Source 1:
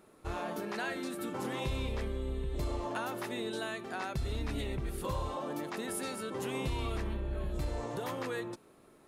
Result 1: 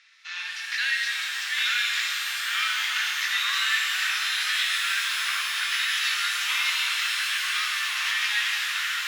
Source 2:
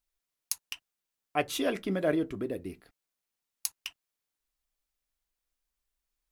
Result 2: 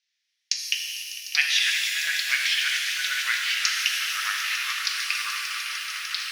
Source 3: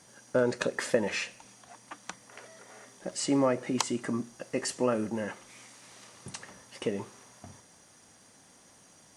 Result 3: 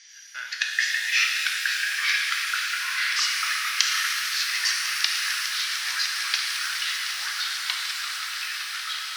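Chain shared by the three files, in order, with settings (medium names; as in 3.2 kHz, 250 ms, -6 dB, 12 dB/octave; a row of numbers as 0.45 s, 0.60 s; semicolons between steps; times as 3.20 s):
elliptic band-pass 1.8–5.8 kHz, stop band 60 dB; on a send: echo with a slow build-up 150 ms, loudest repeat 8, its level -15 dB; on the sum: ever faster or slower copies 772 ms, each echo -2 st, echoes 3; pitch-shifted reverb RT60 2.7 s, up +12 st, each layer -8 dB, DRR 0.5 dB; normalise loudness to -24 LUFS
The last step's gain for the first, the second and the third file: +16.0 dB, +14.0 dB, +11.5 dB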